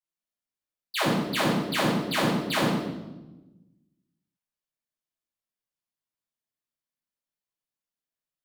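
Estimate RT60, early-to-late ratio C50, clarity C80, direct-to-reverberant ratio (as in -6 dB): 1.1 s, 1.0 dB, 4.0 dB, -10.0 dB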